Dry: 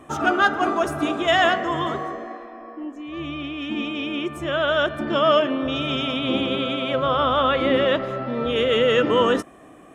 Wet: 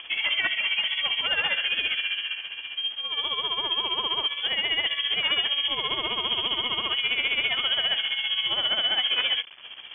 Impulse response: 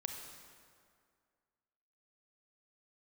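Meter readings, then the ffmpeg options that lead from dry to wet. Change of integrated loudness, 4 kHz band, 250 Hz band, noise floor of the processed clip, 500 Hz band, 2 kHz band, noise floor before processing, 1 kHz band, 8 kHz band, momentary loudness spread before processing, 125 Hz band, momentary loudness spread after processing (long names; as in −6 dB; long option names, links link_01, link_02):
−2.5 dB, +7.0 dB, −22.5 dB, −41 dBFS, −20.0 dB, −1.5 dB, −46 dBFS, −12.5 dB, can't be measured, 14 LU, −18.5 dB, 5 LU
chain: -filter_complex "[0:a]aeval=exprs='(mod(2.66*val(0)+1,2)-1)/2.66':channel_layout=same,acontrast=34,asoftclip=type=tanh:threshold=-12dB,asplit=2[link_01][link_02];[1:a]atrim=start_sample=2205,asetrate=79380,aresample=44100,lowshelf=frequency=290:gain=-10[link_03];[link_02][link_03]afir=irnorm=-1:irlink=0,volume=-16dB[link_04];[link_01][link_04]amix=inputs=2:normalize=0,alimiter=limit=-18dB:level=0:latency=1:release=18,acompressor=mode=upward:threshold=-34dB:ratio=2.5,anlmdn=0.631,acrusher=bits=6:mix=0:aa=0.000001,lowpass=frequency=3000:width_type=q:width=0.5098,lowpass=frequency=3000:width_type=q:width=0.6013,lowpass=frequency=3000:width_type=q:width=0.9,lowpass=frequency=3000:width_type=q:width=2.563,afreqshift=-3500,tremolo=f=15:d=0.63"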